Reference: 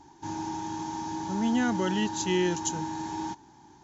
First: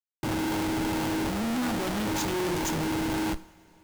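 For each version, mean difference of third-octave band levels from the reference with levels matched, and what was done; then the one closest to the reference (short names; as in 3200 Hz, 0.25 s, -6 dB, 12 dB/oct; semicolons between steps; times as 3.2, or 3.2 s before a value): 10.5 dB: de-hum 120 Hz, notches 4; Schmitt trigger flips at -34.5 dBFS; two-slope reverb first 0.49 s, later 3.8 s, from -18 dB, DRR 13 dB; gain +2 dB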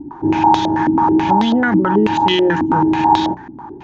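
7.5 dB: notches 60/120/180 Hz; maximiser +25.5 dB; stepped low-pass 9.2 Hz 280–3700 Hz; gain -8 dB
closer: second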